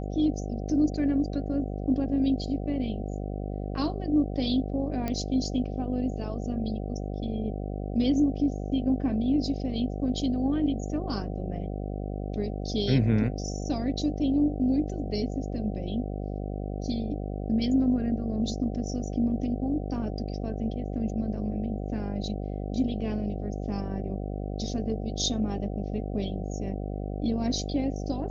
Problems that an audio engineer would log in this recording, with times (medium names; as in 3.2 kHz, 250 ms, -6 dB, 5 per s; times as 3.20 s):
buzz 50 Hz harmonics 15 -33 dBFS
5.08 s: pop -17 dBFS